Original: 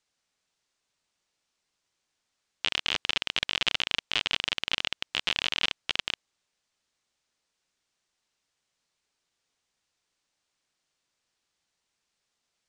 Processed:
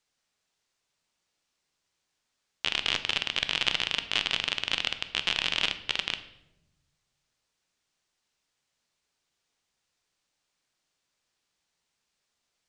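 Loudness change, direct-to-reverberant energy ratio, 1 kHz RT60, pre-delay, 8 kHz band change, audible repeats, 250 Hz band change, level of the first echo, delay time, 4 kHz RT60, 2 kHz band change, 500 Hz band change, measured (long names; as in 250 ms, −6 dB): +0.5 dB, 9.5 dB, 0.75 s, 12 ms, +0.5 dB, no echo audible, +1.0 dB, no echo audible, no echo audible, 0.60 s, +0.5 dB, +0.5 dB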